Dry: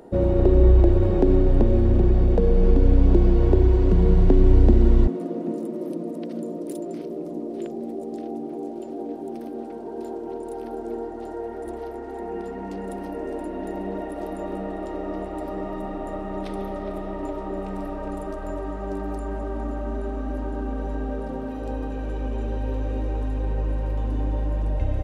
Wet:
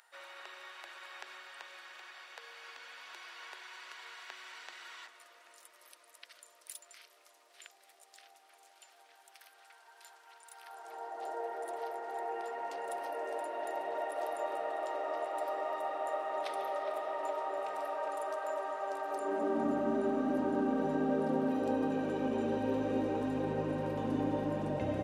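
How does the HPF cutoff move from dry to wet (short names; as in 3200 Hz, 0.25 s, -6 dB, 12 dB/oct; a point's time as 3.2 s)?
HPF 24 dB/oct
10.5 s 1400 Hz
11.28 s 580 Hz
19.07 s 580 Hz
19.67 s 140 Hz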